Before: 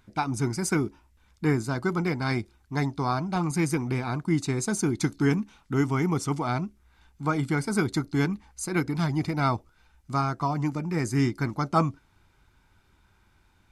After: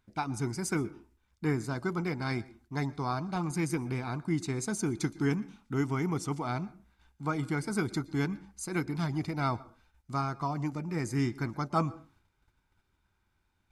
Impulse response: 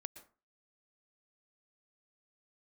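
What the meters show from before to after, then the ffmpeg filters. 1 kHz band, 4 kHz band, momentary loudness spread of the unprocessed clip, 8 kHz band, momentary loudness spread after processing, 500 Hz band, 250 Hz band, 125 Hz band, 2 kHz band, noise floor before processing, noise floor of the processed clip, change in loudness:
-5.5 dB, -5.5 dB, 5 LU, -5.5 dB, 5 LU, -5.5 dB, -5.5 dB, -5.5 dB, -5.5 dB, -64 dBFS, -75 dBFS, -5.5 dB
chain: -filter_complex "[0:a]agate=range=-7dB:threshold=-59dB:ratio=16:detection=peak,asplit=2[a][b];[1:a]atrim=start_sample=2205[c];[b][c]afir=irnorm=-1:irlink=0,volume=-2dB[d];[a][d]amix=inputs=2:normalize=0,volume=-9dB"

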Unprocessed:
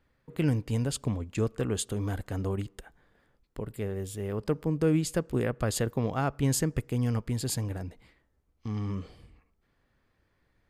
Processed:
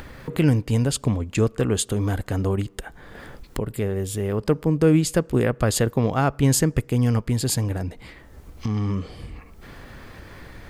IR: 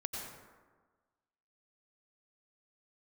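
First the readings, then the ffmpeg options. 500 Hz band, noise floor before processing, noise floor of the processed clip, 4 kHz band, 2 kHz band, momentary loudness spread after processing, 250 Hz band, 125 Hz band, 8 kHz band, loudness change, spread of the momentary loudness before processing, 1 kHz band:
+8.0 dB, -73 dBFS, -48 dBFS, +8.0 dB, +8.5 dB, 20 LU, +8.0 dB, +8.0 dB, +8.0 dB, +8.0 dB, 12 LU, +8.0 dB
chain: -af "acompressor=mode=upward:threshold=-30dB:ratio=2.5,volume=8dB"

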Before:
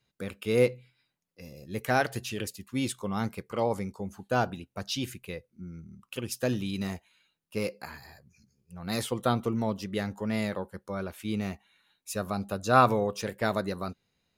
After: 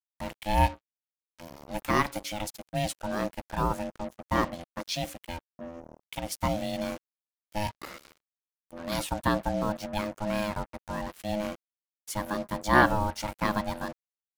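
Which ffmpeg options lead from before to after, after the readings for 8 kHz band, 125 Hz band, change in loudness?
+0.5 dB, -1.0 dB, 0.0 dB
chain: -af "acrusher=bits=6:mix=0:aa=0.5,aeval=exprs='val(0)*sin(2*PI*420*n/s)':c=same,volume=3dB"

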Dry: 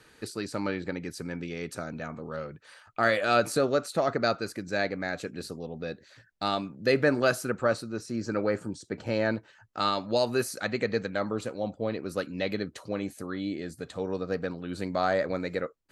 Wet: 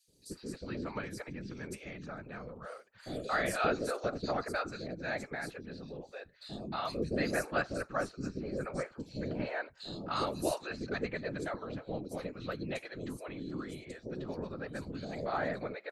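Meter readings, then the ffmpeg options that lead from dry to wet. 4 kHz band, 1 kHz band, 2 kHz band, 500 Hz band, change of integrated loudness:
-8.5 dB, -6.5 dB, -6.5 dB, -9.0 dB, -7.5 dB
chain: -filter_complex "[0:a]afftfilt=real='hypot(re,im)*cos(2*PI*random(0))':imag='hypot(re,im)*sin(2*PI*random(1))':win_size=512:overlap=0.75,acrossover=split=500|4100[a][b][c];[a]adelay=80[d];[b]adelay=310[e];[d][e][c]amix=inputs=3:normalize=0"

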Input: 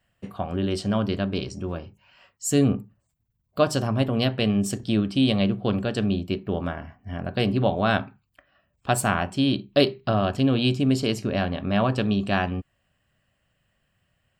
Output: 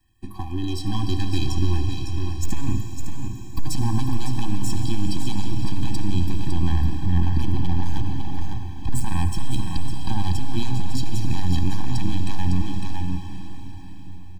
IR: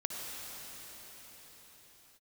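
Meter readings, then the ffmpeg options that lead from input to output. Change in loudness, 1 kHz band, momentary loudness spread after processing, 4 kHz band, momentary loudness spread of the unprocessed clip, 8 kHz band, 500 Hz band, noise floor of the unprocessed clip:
-2.5 dB, -5.5 dB, 10 LU, -5.0 dB, 11 LU, -2.5 dB, -14.5 dB, -73 dBFS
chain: -filter_complex "[0:a]aeval=exprs='if(lt(val(0),0),0.447*val(0),val(0))':c=same,aecho=1:1:2.8:0.73,acrossover=split=220|1900|4400[a][b][c][d];[a]acompressor=threshold=-40dB:ratio=4[e];[b]acompressor=threshold=-33dB:ratio=4[f];[c]acompressor=threshold=-41dB:ratio=4[g];[d]acompressor=threshold=-47dB:ratio=4[h];[e][f][g][h]amix=inputs=4:normalize=0,asubboost=boost=8.5:cutoff=120,dynaudnorm=f=310:g=7:m=5.5dB,equalizer=f=1.6k:t=o:w=1.5:g=-12,volume=21dB,asoftclip=hard,volume=-21dB,aecho=1:1:555:0.447,asplit=2[i][j];[1:a]atrim=start_sample=2205,lowshelf=f=230:g=-7[k];[j][k]afir=irnorm=-1:irlink=0,volume=-2.5dB[l];[i][l]amix=inputs=2:normalize=0,alimiter=level_in=14.5dB:limit=-1dB:release=50:level=0:latency=1,afftfilt=real='re*eq(mod(floor(b*sr/1024/380),2),0)':imag='im*eq(mod(floor(b*sr/1024/380),2),0)':win_size=1024:overlap=0.75,volume=-9dB"

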